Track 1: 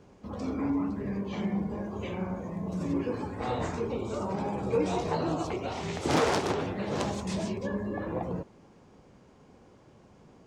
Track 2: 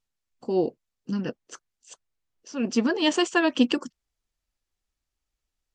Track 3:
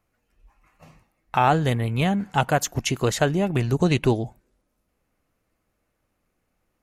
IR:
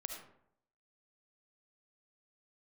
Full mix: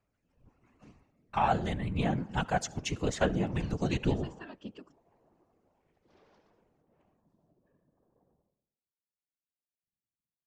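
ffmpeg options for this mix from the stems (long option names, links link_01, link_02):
-filter_complex "[0:a]bandreject=frequency=1300:width=15,afwtdn=0.00891,volume=-14dB,asplit=2[link_01][link_02];[link_02]volume=-19dB[link_03];[1:a]highshelf=frequency=5800:gain=-11.5,adelay=1050,volume=-18dB,asplit=2[link_04][link_05];[link_05]volume=-23.5dB[link_06];[2:a]lowpass=frequency=8000:width=0.5412,lowpass=frequency=8000:width=1.3066,aphaser=in_gain=1:out_gain=1:delay=1.5:decay=0.38:speed=0.93:type=sinusoidal,volume=-5.5dB,asplit=3[link_07][link_08][link_09];[link_08]volume=-14dB[link_10];[link_09]apad=whole_len=461580[link_11];[link_01][link_11]sidechaingate=range=-33dB:threshold=-50dB:ratio=16:detection=peak[link_12];[3:a]atrim=start_sample=2205[link_13];[link_03][link_06][link_10]amix=inputs=3:normalize=0[link_14];[link_14][link_13]afir=irnorm=-1:irlink=0[link_15];[link_12][link_04][link_07][link_15]amix=inputs=4:normalize=0,afftfilt=real='hypot(re,im)*cos(2*PI*random(0))':imag='hypot(re,im)*sin(2*PI*random(1))':win_size=512:overlap=0.75"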